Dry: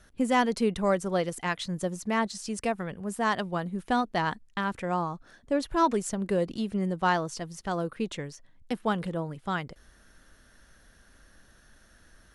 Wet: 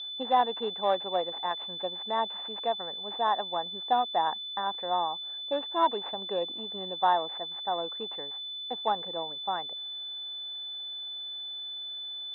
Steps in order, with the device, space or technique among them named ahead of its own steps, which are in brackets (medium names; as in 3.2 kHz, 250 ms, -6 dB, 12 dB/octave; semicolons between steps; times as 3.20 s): toy sound module (decimation joined by straight lines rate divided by 4×; class-D stage that switches slowly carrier 3.5 kHz; cabinet simulation 540–4500 Hz, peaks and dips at 800 Hz +9 dB, 1.4 kHz -6 dB, 2.3 kHz -7 dB)